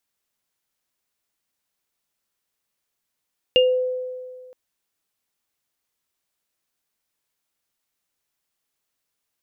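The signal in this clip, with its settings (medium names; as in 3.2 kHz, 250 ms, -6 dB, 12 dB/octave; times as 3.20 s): sine partials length 0.97 s, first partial 507 Hz, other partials 2.82 kHz, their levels 0 dB, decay 1.90 s, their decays 0.24 s, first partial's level -12 dB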